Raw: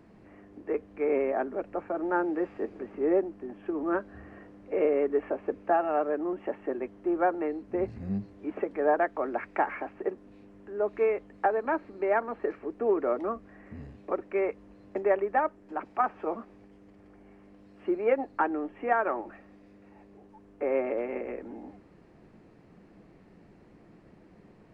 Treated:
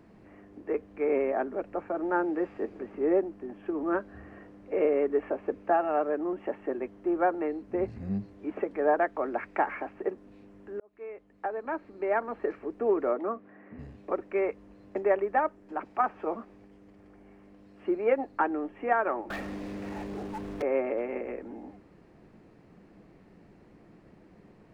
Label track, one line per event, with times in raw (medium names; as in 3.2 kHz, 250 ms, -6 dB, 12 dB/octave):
10.800000	12.390000	fade in
13.110000	13.790000	band-pass 180–2400 Hz
19.300000	20.620000	waveshaping leveller passes 5